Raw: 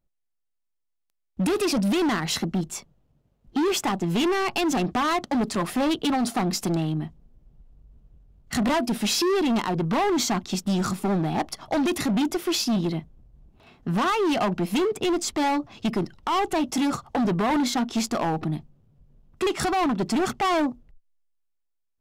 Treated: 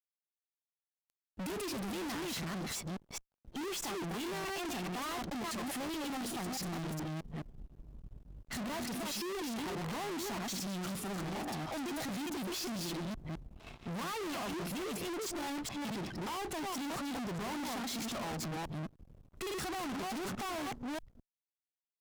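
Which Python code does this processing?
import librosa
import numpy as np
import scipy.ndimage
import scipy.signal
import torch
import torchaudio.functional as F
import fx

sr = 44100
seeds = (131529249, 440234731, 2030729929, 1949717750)

y = fx.reverse_delay(x, sr, ms=212, wet_db=-2)
y = np.sign(y) * np.maximum(np.abs(y) - 10.0 ** (-56.0 / 20.0), 0.0)
y = fx.tube_stage(y, sr, drive_db=44.0, bias=0.55)
y = F.gain(torch.from_numpy(y), 6.0).numpy()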